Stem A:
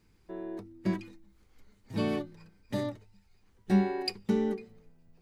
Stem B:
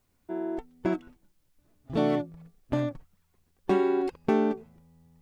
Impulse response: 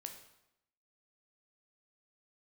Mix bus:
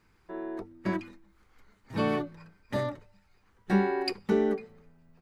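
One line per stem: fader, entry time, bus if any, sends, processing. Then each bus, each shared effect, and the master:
-2.5 dB, 0.00 s, send -18 dB, dry
-2.0 dB, 30 ms, no send, ladder low-pass 620 Hz, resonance 35%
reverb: on, RT60 0.85 s, pre-delay 11 ms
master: bell 1300 Hz +11 dB 1.8 oct

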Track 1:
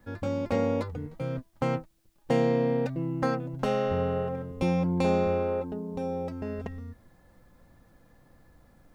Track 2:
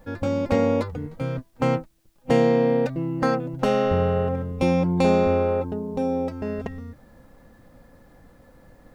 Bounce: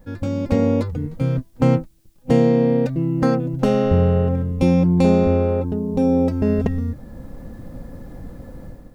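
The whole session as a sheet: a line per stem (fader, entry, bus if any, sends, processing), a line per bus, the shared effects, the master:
-3.0 dB, 0.00 s, no send, HPF 560 Hz; compressor, threshold -33 dBFS, peak gain reduction 8 dB
-4.0 dB, 0.00 s, no send, tilt shelf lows +8.5 dB, about 660 Hz; AGC gain up to 13.5 dB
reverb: off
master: high shelf 3000 Hz +7 dB

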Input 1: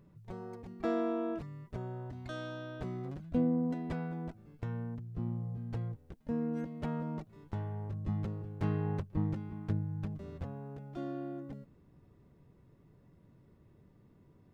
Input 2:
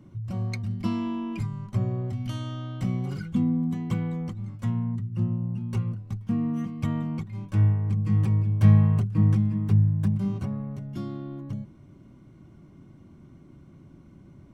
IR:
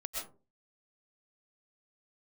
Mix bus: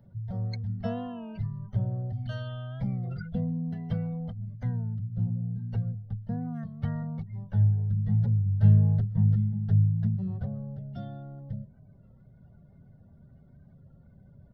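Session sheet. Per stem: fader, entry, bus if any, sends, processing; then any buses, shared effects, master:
-3.5 dB, 0.00 s, send -19.5 dB, reverb removal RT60 1.2 s; comb 4.4 ms, depth 65%
-0.5 dB, 0.00 s, no send, spectral gate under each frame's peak -30 dB strong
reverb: on, RT60 0.35 s, pre-delay 85 ms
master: fixed phaser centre 1600 Hz, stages 8; record warp 33 1/3 rpm, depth 100 cents

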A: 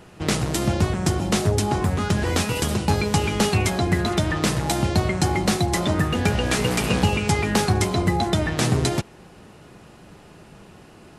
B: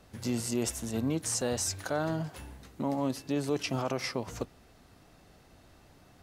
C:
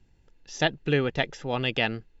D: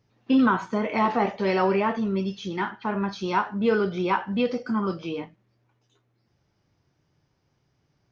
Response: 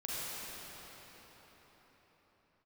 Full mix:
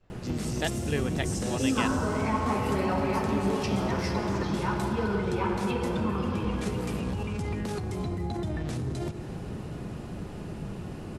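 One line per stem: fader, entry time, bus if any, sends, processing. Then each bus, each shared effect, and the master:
-0.5 dB, 0.10 s, bus A, send -18 dB, low shelf 440 Hz +12 dB; limiter -15 dBFS, peak gain reduction 16.5 dB; compressor, threshold -24 dBFS, peak gain reduction 6.5 dB
+1.5 dB, 0.00 s, bus A, send -11 dB, expander -51 dBFS; low-pass opened by the level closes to 2600 Hz, open at -31 dBFS; auto duck -8 dB, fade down 0.20 s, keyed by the third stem
-7.0 dB, 0.00 s, no bus, no send, dry
-1.5 dB, 1.30 s, bus A, send -7.5 dB, ensemble effect
bus A: 0.0 dB, compressor, threshold -30 dBFS, peak gain reduction 12 dB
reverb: on, RT60 5.0 s, pre-delay 35 ms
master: dry

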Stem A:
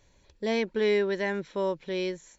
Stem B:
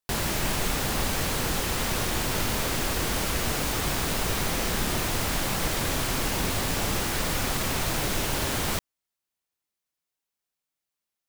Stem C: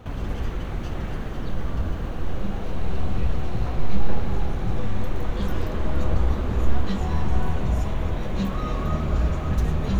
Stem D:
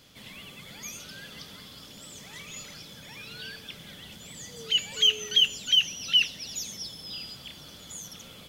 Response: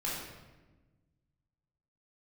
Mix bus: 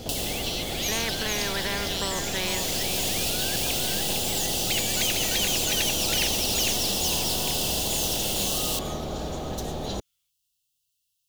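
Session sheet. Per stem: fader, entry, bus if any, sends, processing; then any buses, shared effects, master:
0.0 dB, 0.00 s, bus A, no send, echo send -4.5 dB, limiter -23.5 dBFS, peak gain reduction 6.5 dB
-6.0 dB, 0.00 s, bus A, no send, no echo send, auto duck -18 dB, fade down 0.50 s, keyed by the first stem
-8.5 dB, 0.00 s, no bus, no send, no echo send, band shelf 1600 Hz -15.5 dB
-4.0 dB, 0.00 s, no bus, no send, echo send -5 dB, passive tone stack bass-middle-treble 10-0-10
bus A: 0.0 dB, brick-wall FIR band-stop 160–2600 Hz; compressor 3:1, threshold -42 dBFS, peak gain reduction 10 dB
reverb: off
echo: feedback echo 0.455 s, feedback 22%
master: spectral compressor 4:1

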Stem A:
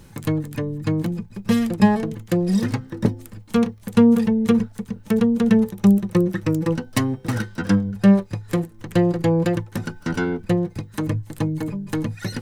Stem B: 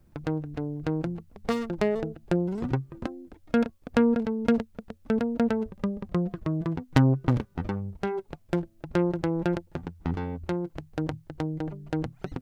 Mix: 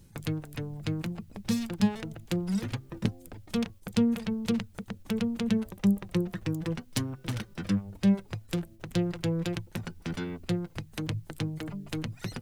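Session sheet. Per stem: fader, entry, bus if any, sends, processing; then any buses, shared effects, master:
-7.5 dB, 0.00 s, no send, reverb removal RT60 0.55 s
-2.0 dB, 0.00 s, no send, gate with hold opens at -47 dBFS; tone controls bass -1 dB, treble -7 dB; spectral compressor 10:1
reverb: off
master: bell 1100 Hz -9.5 dB 3 oct

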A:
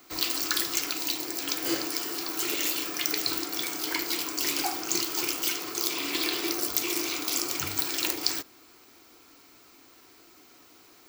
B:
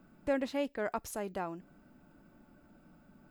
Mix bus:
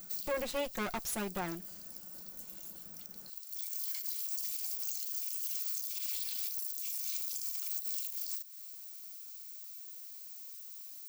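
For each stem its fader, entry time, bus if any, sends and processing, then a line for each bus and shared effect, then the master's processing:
-4.0 dB, 0.00 s, no send, differentiator; compressor 4:1, threshold -34 dBFS, peak gain reduction 15 dB; auto duck -17 dB, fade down 0.50 s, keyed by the second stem
+1.0 dB, 0.00 s, no send, minimum comb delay 5.5 ms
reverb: off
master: high shelf 3700 Hz +10.5 dB; limiter -25.5 dBFS, peak gain reduction 17.5 dB

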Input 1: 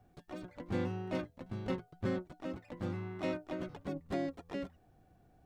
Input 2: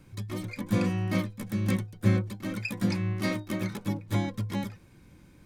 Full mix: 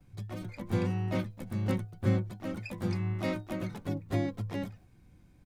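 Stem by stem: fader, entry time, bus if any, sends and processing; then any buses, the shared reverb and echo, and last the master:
+1.5 dB, 0.00 s, no send, gate -60 dBFS, range -13 dB
-10.0 dB, 6.2 ms, no send, low shelf 140 Hz +10 dB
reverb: off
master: dry

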